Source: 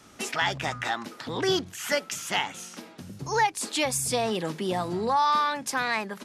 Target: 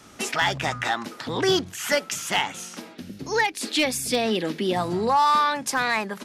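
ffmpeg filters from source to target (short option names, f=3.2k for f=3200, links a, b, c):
-filter_complex "[0:a]asplit=3[a][b][c];[a]afade=t=out:st=2.93:d=0.02[d];[b]equalizer=f=125:t=o:w=1:g=-11,equalizer=f=250:t=o:w=1:g=6,equalizer=f=1k:t=o:w=1:g=-8,equalizer=f=2k:t=o:w=1:g=3,equalizer=f=4k:t=o:w=1:g=3,equalizer=f=8k:t=o:w=1:g=-7,afade=t=in:st=2.93:d=0.02,afade=t=out:st=4.75:d=0.02[e];[c]afade=t=in:st=4.75:d=0.02[f];[d][e][f]amix=inputs=3:normalize=0,asoftclip=type=hard:threshold=-16.5dB,volume=4dB"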